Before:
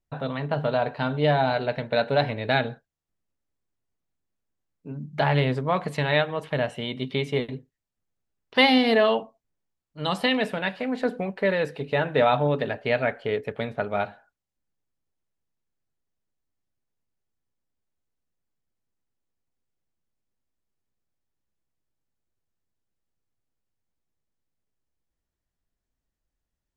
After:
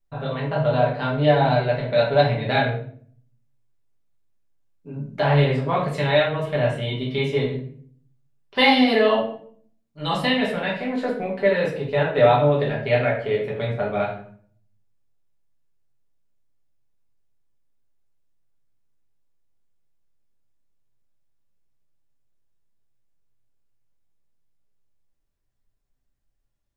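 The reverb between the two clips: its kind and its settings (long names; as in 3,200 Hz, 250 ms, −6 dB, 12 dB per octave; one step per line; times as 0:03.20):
rectangular room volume 66 cubic metres, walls mixed, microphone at 1.2 metres
level −3.5 dB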